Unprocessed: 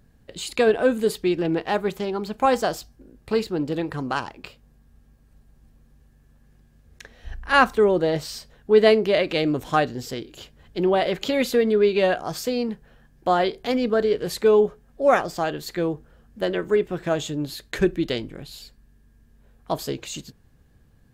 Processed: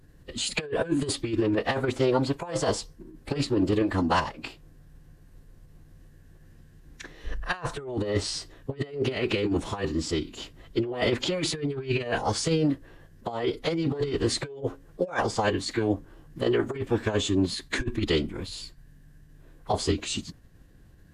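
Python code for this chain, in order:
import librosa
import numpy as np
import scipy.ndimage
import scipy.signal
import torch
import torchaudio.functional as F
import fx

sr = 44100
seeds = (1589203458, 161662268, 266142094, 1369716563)

y = fx.pitch_keep_formants(x, sr, semitones=-7.5)
y = fx.over_compress(y, sr, threshold_db=-25.0, ratio=-0.5)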